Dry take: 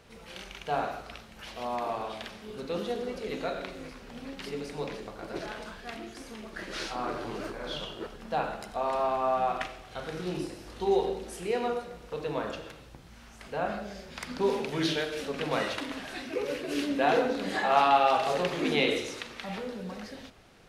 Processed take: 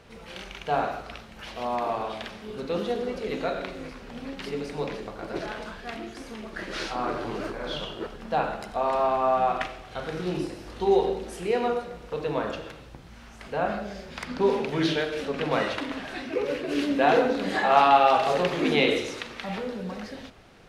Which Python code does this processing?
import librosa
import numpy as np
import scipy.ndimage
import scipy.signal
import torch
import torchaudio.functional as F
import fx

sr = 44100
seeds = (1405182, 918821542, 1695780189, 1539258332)

y = fx.high_shelf(x, sr, hz=5600.0, db=fx.steps((0.0, -7.0), (14.22, -12.0), (16.8, -6.5)))
y = F.gain(torch.from_numpy(y), 4.5).numpy()